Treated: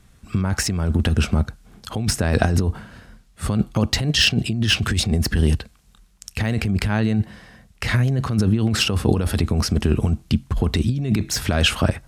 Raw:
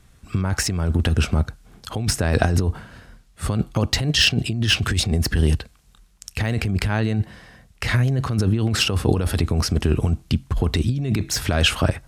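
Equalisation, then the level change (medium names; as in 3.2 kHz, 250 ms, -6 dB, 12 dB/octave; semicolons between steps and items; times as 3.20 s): peaking EQ 210 Hz +5 dB 0.32 oct; 0.0 dB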